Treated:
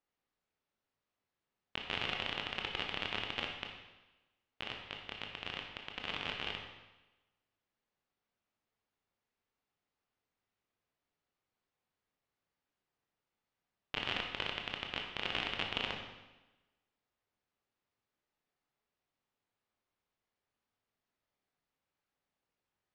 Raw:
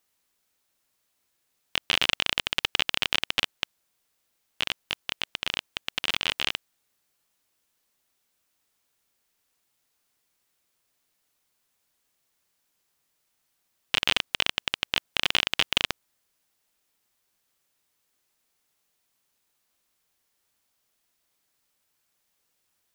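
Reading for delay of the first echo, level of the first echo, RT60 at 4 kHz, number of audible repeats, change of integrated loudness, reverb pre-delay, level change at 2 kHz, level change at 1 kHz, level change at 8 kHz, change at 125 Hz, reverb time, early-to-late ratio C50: no echo audible, no echo audible, 1.0 s, no echo audible, −12.0 dB, 19 ms, −10.5 dB, −7.0 dB, −23.0 dB, −5.0 dB, 1.1 s, 4.0 dB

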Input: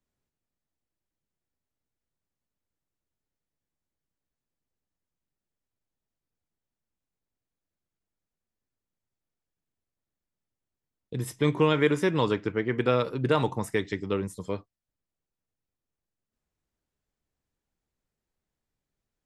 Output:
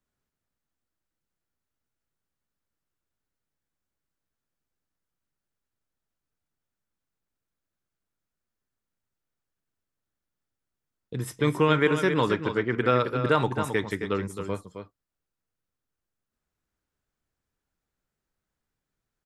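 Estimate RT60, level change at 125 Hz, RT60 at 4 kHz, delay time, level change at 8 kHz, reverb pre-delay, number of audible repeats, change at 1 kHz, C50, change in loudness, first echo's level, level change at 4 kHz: no reverb audible, +1.0 dB, no reverb audible, 266 ms, +0.5 dB, no reverb audible, 1, +4.0 dB, no reverb audible, +1.5 dB, −8.5 dB, +1.0 dB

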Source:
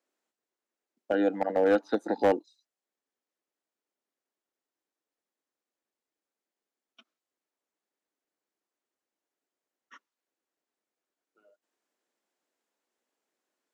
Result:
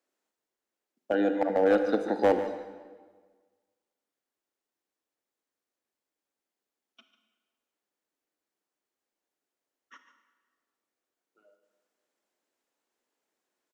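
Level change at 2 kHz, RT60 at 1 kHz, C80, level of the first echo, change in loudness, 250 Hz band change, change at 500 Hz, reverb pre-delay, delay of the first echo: +1.0 dB, 1.5 s, 8.5 dB, −13.0 dB, +1.0 dB, +1.5 dB, +1.0 dB, 32 ms, 146 ms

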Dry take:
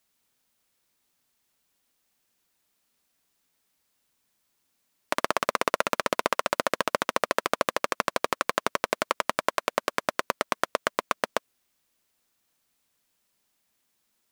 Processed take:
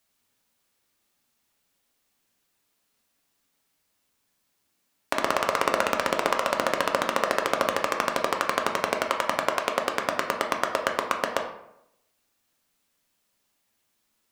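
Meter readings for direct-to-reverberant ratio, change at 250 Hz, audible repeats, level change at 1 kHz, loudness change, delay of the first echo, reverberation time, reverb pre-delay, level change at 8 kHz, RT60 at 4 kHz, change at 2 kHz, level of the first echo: 2.5 dB, +2.5 dB, no echo audible, +2.0 dB, +2.0 dB, no echo audible, 0.80 s, 6 ms, +0.5 dB, 0.50 s, +1.5 dB, no echo audible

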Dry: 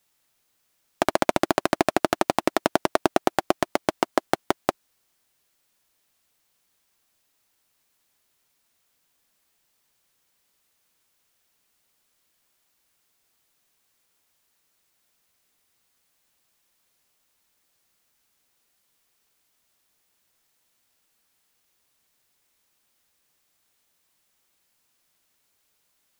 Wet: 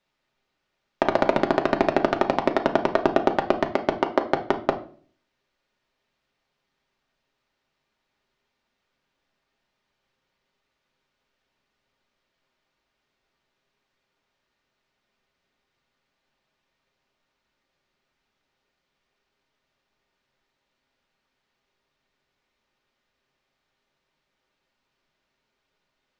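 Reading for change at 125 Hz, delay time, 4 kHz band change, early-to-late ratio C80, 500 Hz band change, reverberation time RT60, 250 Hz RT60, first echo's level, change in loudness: +2.0 dB, no echo audible, −4.0 dB, 18.0 dB, +2.5 dB, 0.45 s, 0.60 s, no echo audible, +1.0 dB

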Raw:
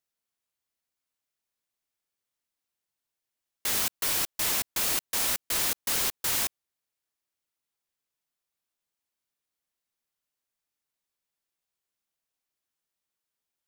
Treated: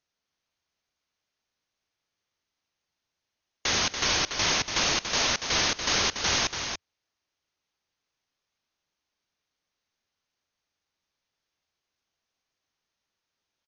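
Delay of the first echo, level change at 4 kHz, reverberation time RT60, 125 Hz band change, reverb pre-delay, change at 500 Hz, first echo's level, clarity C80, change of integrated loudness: 177 ms, +7.5 dB, no reverb audible, +9.0 dB, no reverb audible, +7.5 dB, −19.5 dB, no reverb audible, +1.5 dB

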